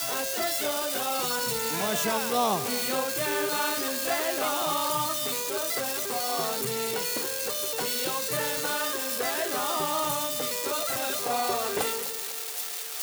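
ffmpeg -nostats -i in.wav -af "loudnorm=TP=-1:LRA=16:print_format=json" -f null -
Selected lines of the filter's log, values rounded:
"input_i" : "-27.5",
"input_tp" : "-13.5",
"input_lra" : "2.0",
"input_thresh" : "-37.5",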